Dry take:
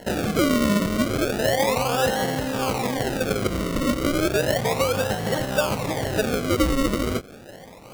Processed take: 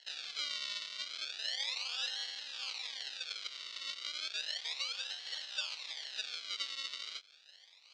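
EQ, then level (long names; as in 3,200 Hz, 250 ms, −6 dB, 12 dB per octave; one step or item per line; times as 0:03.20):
four-pole ladder band-pass 4,700 Hz, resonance 45%
high-frequency loss of the air 150 metres
+8.5 dB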